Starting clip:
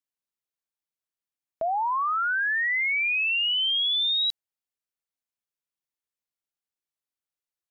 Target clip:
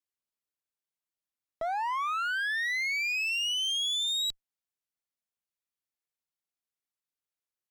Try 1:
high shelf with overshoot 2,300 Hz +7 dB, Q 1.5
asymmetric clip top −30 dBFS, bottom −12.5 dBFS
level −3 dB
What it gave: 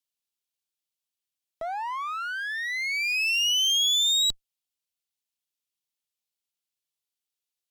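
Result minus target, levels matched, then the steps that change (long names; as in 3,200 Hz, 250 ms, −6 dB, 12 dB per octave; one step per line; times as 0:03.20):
2,000 Hz band −3.5 dB
remove: high shelf with overshoot 2,300 Hz +7 dB, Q 1.5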